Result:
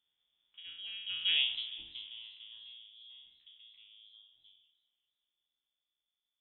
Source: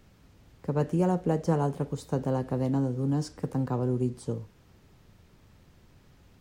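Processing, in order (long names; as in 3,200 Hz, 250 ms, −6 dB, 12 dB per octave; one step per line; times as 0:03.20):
peak hold with a decay on every bin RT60 0.80 s
source passing by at 0:01.38, 54 m/s, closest 4.4 metres
voice inversion scrambler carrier 3,500 Hz
low-shelf EQ 360 Hz +4 dB
feedback echo with a swinging delay time 195 ms, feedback 59%, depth 202 cents, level −20.5 dB
level −3.5 dB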